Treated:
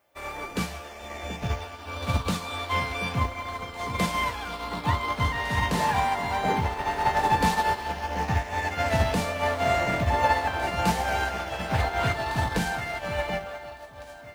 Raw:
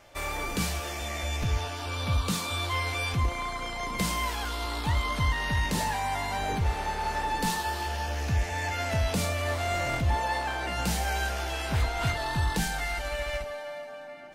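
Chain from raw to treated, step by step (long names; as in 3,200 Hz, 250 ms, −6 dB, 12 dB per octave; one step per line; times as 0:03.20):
background noise violet −56 dBFS
high-shelf EQ 3,700 Hz −10 dB
in parallel at −2.5 dB: brickwall limiter −23 dBFS, peak gain reduction 5.5 dB
on the sum: high-pass filter 140 Hz 6 dB per octave
mains-hum notches 50/100/150/200/250/300/350 Hz
on a send: delay that swaps between a low-pass and a high-pass 729 ms, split 1,100 Hz, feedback 71%, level −6 dB
on the sum: expander for the loud parts 2.5 to 1, over −38 dBFS
level +5.5 dB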